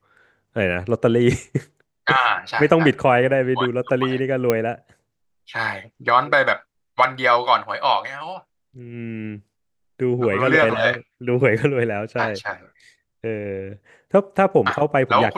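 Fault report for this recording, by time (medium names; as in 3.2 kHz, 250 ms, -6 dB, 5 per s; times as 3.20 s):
4.50 s: pop -5 dBFS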